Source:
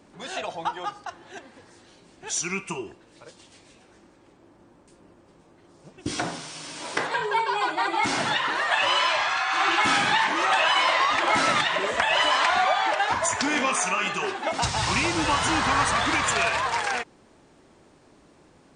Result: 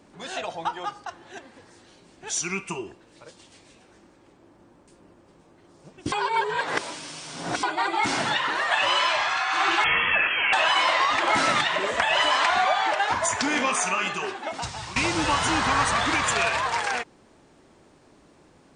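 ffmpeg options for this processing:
ffmpeg -i in.wav -filter_complex "[0:a]asettb=1/sr,asplit=3[link_01][link_02][link_03];[link_01]atrim=end=9.844[link_04];[link_02]atrim=start=9.84:end=10.53,asetpts=PTS-STARTPTS,afade=type=in:duration=0.004:curve=qsin,afade=type=out:start_time=0.686:duration=0.004:curve=qsin,lowpass=frequency=3000:width_type=q:width=0.5098,lowpass=frequency=3000:width_type=q:width=0.6013,lowpass=frequency=3000:width_type=q:width=0.9,lowpass=frequency=3000:width_type=q:width=2.563,afreqshift=-3500[link_05];[link_03]atrim=start=10.526[link_06];[link_04][link_05]acrossfade=duration=0.004:curve1=hsin:curve2=qsin[link_07];[link_07][link_06]acrossfade=duration=0.004:curve1=qsin:curve2=hsin,asplit=4[link_08][link_09][link_10][link_11];[link_08]atrim=end=6.122[link_12];[link_09]atrim=start=6.118:end=7.632,asetpts=PTS-STARTPTS,areverse[link_13];[link_10]atrim=start=7.628:end=14.96,asetpts=PTS-STARTPTS,afade=type=out:start_time=6.352:duration=0.98:silence=0.188365[link_14];[link_11]atrim=start=14.96,asetpts=PTS-STARTPTS,afade=type=in:duration=0.004:curve=hsin:silence=0.188365[link_15];[link_12][link_13]acrossfade=duration=0.004:curve1=hsin:curve2=hsin[link_16];[link_14][link_15]concat=n=2:v=0:a=1[link_17];[link_16][link_17]acrossfade=duration=0.004:curve1=hsin:curve2=hsin" out.wav

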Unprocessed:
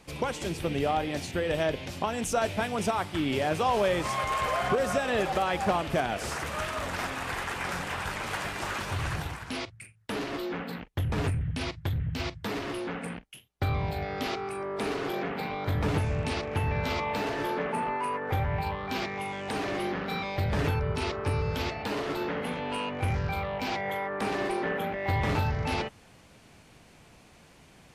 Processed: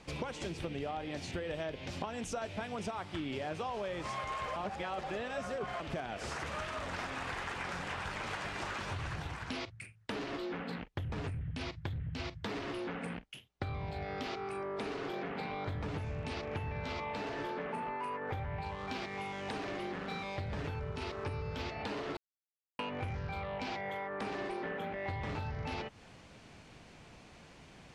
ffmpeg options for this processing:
ffmpeg -i in.wav -filter_complex "[0:a]asettb=1/sr,asplit=3[link_01][link_02][link_03];[link_01]atrim=end=18.654[link_04];[link_02]atrim=start=18.65:end=21.24,asetpts=PTS-STARTPTS,afade=type=in:duration=0.004:curve=qsin,afade=type=out:start_time=2.586:duration=0.004:curve=qsin,aeval=exprs='sgn(val(0))*max(abs(val(0))-0.00473,0)':channel_layout=same[link_05];[link_03]atrim=start=21.236[link_06];[link_04][link_05]acrossfade=duration=0.004:curve1=hsin:curve2=qsin[link_07];[link_07][link_06]acrossfade=duration=0.004:curve1=qsin:curve2=hsin,asplit=5[link_08][link_09][link_10][link_11][link_12];[link_08]atrim=end=4.562[link_13];[link_09]atrim=start=4.558:end=5.802,asetpts=PTS-STARTPTS,areverse[link_14];[link_10]atrim=start=5.798:end=22.17,asetpts=PTS-STARTPTS,afade=type=out:start_time=16.368:duration=0.004:curve=hsin[link_15];[link_11]atrim=start=22.17:end=22.79,asetpts=PTS-STARTPTS,volume=0[link_16];[link_12]atrim=start=22.79,asetpts=PTS-STARTPTS,afade=type=in:duration=0.004:curve=hsin[link_17];[link_13][link_14]acrossfade=duration=0.004:curve1=hsin:curve2=hsin[link_18];[link_15][link_16][link_17]concat=n=3:v=0:a=1[link_19];[link_18][link_19]acrossfade=duration=0.004:curve1=hsin:curve2=hsin,acompressor=threshold=-36dB:ratio=6,lowpass=6700" out.wav

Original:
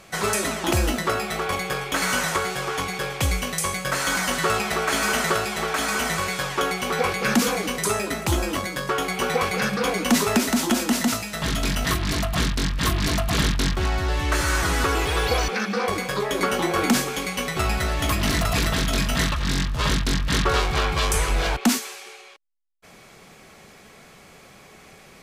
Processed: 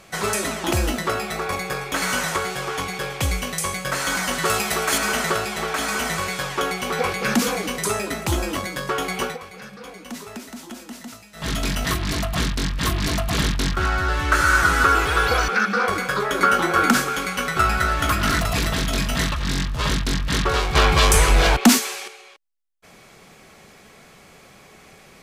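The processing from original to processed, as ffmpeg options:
ffmpeg -i in.wav -filter_complex "[0:a]asettb=1/sr,asplit=3[link_01][link_02][link_03];[link_01]atrim=end=1.324[link_04];[link_02]atrim=start=1.32:end=1.93,asetpts=PTS-STARTPTS,afade=type=in:duration=0.004:curve=qsin,afade=type=out:start_time=0.606:duration=0.004:curve=qsin,bandreject=frequency=3100:width=6.1[link_05];[link_03]atrim=start=1.926[link_06];[link_04][link_05]acrossfade=duration=0.004:curve1=hsin:curve2=qsin[link_07];[link_07][link_06]acrossfade=duration=0.004:curve1=qsin:curve2=hsin,asettb=1/sr,asplit=3[link_08][link_09][link_10];[link_08]atrim=end=4.454[link_11];[link_09]atrim=start=4.45:end=4.98,asetpts=PTS-STARTPTS,afade=type=in:duration=0.004:curve=qsin,afade=type=out:start_time=0.526:duration=0.004:curve=qsin,highshelf=frequency=5700:gain=10[link_12];[link_10]atrim=start=4.976[link_13];[link_11][link_12]acrossfade=duration=0.004:curve1=hsin:curve2=qsin[link_14];[link_14][link_13]acrossfade=duration=0.004:curve1=qsin:curve2=hsin,asettb=1/sr,asplit=3[link_15][link_16][link_17];[link_15]atrim=end=13.744[link_18];[link_16]atrim=start=13.74:end=18.4,asetpts=PTS-STARTPTS,afade=type=in:duration=0.004:curve=qsin,afade=type=out:start_time=4.656:duration=0.004:curve=qsin,equalizer=frequency=1400:width_type=o:width=0.36:gain=14.5[link_19];[link_17]atrim=start=18.396[link_20];[link_18][link_19]acrossfade=duration=0.004:curve1=hsin:curve2=qsin[link_21];[link_21][link_20]acrossfade=duration=0.004:curve1=qsin:curve2=hsin,asettb=1/sr,asplit=3[link_22][link_23][link_24];[link_22]atrim=end=20.754[link_25];[link_23]atrim=start=20.75:end=22.08,asetpts=PTS-STARTPTS,afade=type=in:duration=0.004:curve=qsin,afade=type=out:start_time=1.326:duration=0.004:curve=qsin,acontrast=87[link_26];[link_24]atrim=start=22.076[link_27];[link_25][link_26]acrossfade=duration=0.004:curve1=hsin:curve2=qsin[link_28];[link_28][link_27]acrossfade=duration=0.004:curve1=qsin:curve2=hsin,asplit=3[link_29][link_30][link_31];[link_29]atrim=end=9.38,asetpts=PTS-STARTPTS,afade=type=out:start_time=9.22:duration=0.16:silence=0.16788[link_32];[link_30]atrim=start=9.38:end=11.34,asetpts=PTS-STARTPTS,volume=-15.5dB[link_33];[link_31]atrim=start=11.34,asetpts=PTS-STARTPTS,afade=type=in:duration=0.16:silence=0.16788[link_34];[link_32][link_33][link_34]concat=n=3:v=0:a=1" out.wav

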